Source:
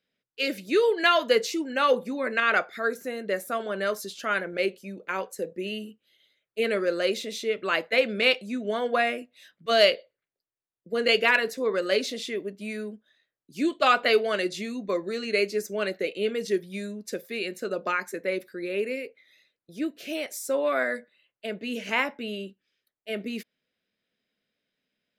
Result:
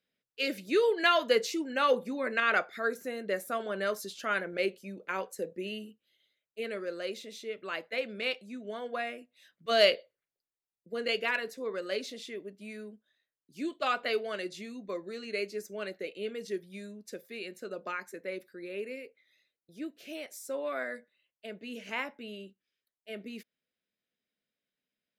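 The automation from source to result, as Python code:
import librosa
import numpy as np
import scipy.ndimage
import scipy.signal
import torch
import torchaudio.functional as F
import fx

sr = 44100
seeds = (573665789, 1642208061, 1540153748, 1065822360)

y = fx.gain(x, sr, db=fx.line((5.48, -4.0), (6.69, -11.0), (9.18, -11.0), (9.93, -2.5), (11.18, -9.5)))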